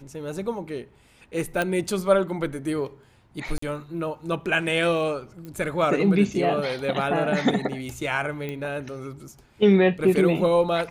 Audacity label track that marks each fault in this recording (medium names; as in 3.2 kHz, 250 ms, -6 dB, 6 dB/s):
1.620000	1.620000	pop -11 dBFS
3.580000	3.620000	dropout 44 ms
5.450000	5.450000	pop -26 dBFS
8.490000	8.490000	pop -19 dBFS